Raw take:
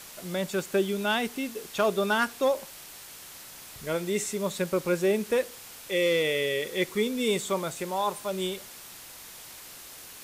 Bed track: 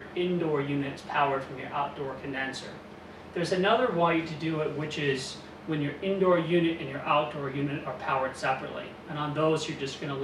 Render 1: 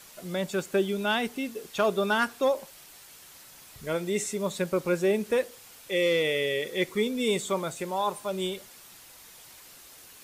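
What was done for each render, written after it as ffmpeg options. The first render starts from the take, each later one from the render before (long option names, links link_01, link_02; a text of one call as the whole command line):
ffmpeg -i in.wav -af "afftdn=noise_reduction=6:noise_floor=-46" out.wav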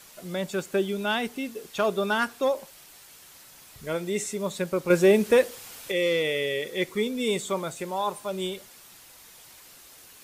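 ffmpeg -i in.wav -filter_complex "[0:a]asettb=1/sr,asplit=3[link_01][link_02][link_03];[link_01]atrim=end=4.904[link_04];[link_02]atrim=start=4.9:end=5.92,asetpts=PTS-STARTPTS,afade=type=in:duration=0.004:curve=qsin,afade=type=out:start_time=1.016:duration=0.004:curve=qsin,acontrast=71[link_05];[link_03]atrim=start=5.916[link_06];[link_04][link_05]acrossfade=duration=0.004:curve1=hsin:curve2=qsin[link_07];[link_07][link_06]acrossfade=duration=0.004:curve1=qsin:curve2=hsin" out.wav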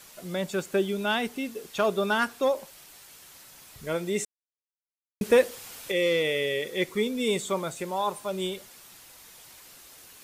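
ffmpeg -i in.wav -filter_complex "[0:a]asplit=3[link_01][link_02][link_03];[link_01]atrim=end=4.25,asetpts=PTS-STARTPTS,afade=type=out:start_time=4.246:duration=0.004:curve=hsin[link_04];[link_02]atrim=start=4.25:end=5.21,asetpts=PTS-STARTPTS,volume=0[link_05];[link_03]atrim=start=5.21,asetpts=PTS-STARTPTS,afade=type=in:duration=0.004:curve=hsin[link_06];[link_04][link_05][link_06]concat=n=3:v=0:a=1" out.wav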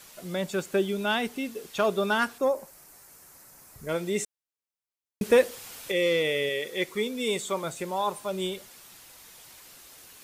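ffmpeg -i in.wav -filter_complex "[0:a]asettb=1/sr,asplit=3[link_01][link_02][link_03];[link_01]atrim=end=2.384[link_04];[link_02]atrim=start=2.38:end=3.89,asetpts=PTS-STARTPTS,afade=type=in:duration=0.004:curve=qsin,afade=type=out:start_time=1.506:duration=0.004:curve=qsin,equalizer=frequency=3300:width=1.3:gain=-14[link_05];[link_03]atrim=start=3.886[link_06];[link_04][link_05]acrossfade=duration=0.004:curve1=hsin:curve2=qsin[link_07];[link_07][link_06]acrossfade=duration=0.004:curve1=qsin:curve2=hsin,asettb=1/sr,asplit=3[link_08][link_09][link_10];[link_08]atrim=end=6.494[link_11];[link_09]atrim=start=6.49:end=7.64,asetpts=PTS-STARTPTS,afade=type=in:duration=0.004:curve=qsin,afade=type=out:start_time=1.146:duration=0.004:curve=qsin,lowshelf=frequency=260:gain=-7[link_12];[link_10]atrim=start=7.636[link_13];[link_11][link_12]acrossfade=duration=0.004:curve1=hsin:curve2=qsin[link_14];[link_14][link_13]acrossfade=duration=0.004:curve1=qsin:curve2=hsin" out.wav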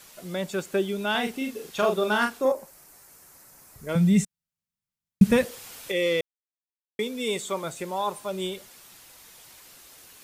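ffmpeg -i in.wav -filter_complex "[0:a]asettb=1/sr,asplit=3[link_01][link_02][link_03];[link_01]atrim=end=1.114[link_04];[link_02]atrim=start=1.11:end=2.52,asetpts=PTS-STARTPTS,afade=type=in:duration=0.004:curve=qsin,afade=type=out:start_time=1.406:duration=0.004:curve=qsin,asplit=2[link_05][link_06];[link_06]adelay=38,volume=-4dB[link_07];[link_05][link_07]amix=inputs=2:normalize=0,atrim=end_sample=62181[link_08];[link_03]atrim=start=2.516[link_09];[link_04][link_08]acrossfade=duration=0.004:curve1=hsin:curve2=qsin[link_10];[link_10][link_09]acrossfade=duration=0.004:curve1=qsin:curve2=hsin,asettb=1/sr,asplit=3[link_11][link_12][link_13];[link_11]atrim=end=3.954[link_14];[link_12]atrim=start=3.95:end=5.45,asetpts=PTS-STARTPTS,afade=type=in:duration=0.004:curve=qsin,afade=type=out:start_time=1.496:duration=0.004:curve=qsin,lowshelf=frequency=250:width_type=q:width=3:gain=12[link_15];[link_13]atrim=start=5.446[link_16];[link_14][link_15]acrossfade=duration=0.004:curve1=hsin:curve2=qsin[link_17];[link_17][link_16]acrossfade=duration=0.004:curve1=qsin:curve2=hsin,asplit=3[link_18][link_19][link_20];[link_18]atrim=end=6.21,asetpts=PTS-STARTPTS,afade=type=out:start_time=6.206:duration=0.004:curve=hsin[link_21];[link_19]atrim=start=6.21:end=6.99,asetpts=PTS-STARTPTS,volume=0[link_22];[link_20]atrim=start=6.99,asetpts=PTS-STARTPTS,afade=type=in:duration=0.004:curve=hsin[link_23];[link_21][link_22][link_23]concat=n=3:v=0:a=1" out.wav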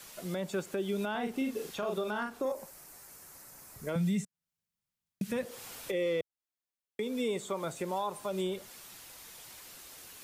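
ffmpeg -i in.wav -filter_complex "[0:a]acrossover=split=110|1500[link_01][link_02][link_03];[link_01]acompressor=threshold=-58dB:ratio=4[link_04];[link_02]acompressor=threshold=-27dB:ratio=4[link_05];[link_03]acompressor=threshold=-44dB:ratio=4[link_06];[link_04][link_05][link_06]amix=inputs=3:normalize=0,alimiter=limit=-24dB:level=0:latency=1:release=119" out.wav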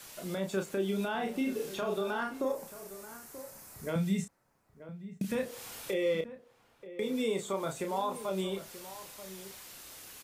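ffmpeg -i in.wav -filter_complex "[0:a]asplit=2[link_01][link_02];[link_02]adelay=31,volume=-6dB[link_03];[link_01][link_03]amix=inputs=2:normalize=0,asplit=2[link_04][link_05];[link_05]adelay=932.9,volume=-14dB,highshelf=frequency=4000:gain=-21[link_06];[link_04][link_06]amix=inputs=2:normalize=0" out.wav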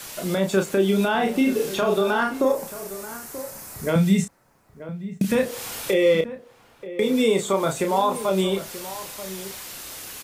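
ffmpeg -i in.wav -af "volume=12dB" out.wav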